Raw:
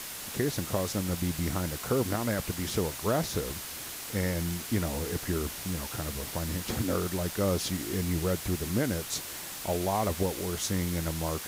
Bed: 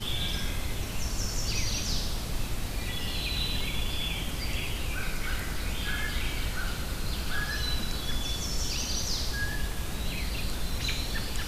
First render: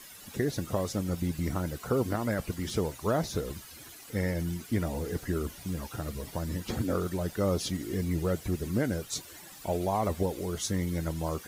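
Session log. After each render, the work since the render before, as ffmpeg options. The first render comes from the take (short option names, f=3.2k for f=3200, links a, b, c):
-af "afftdn=nr=13:nf=-40"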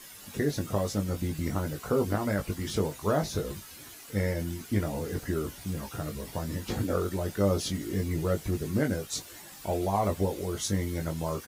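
-filter_complex "[0:a]asplit=2[a][b];[b]adelay=20,volume=-5dB[c];[a][c]amix=inputs=2:normalize=0"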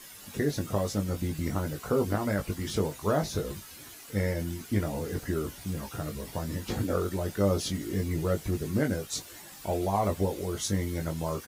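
-af anull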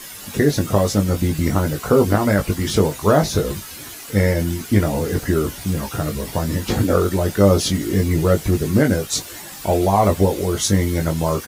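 -af "volume=12dB,alimiter=limit=-3dB:level=0:latency=1"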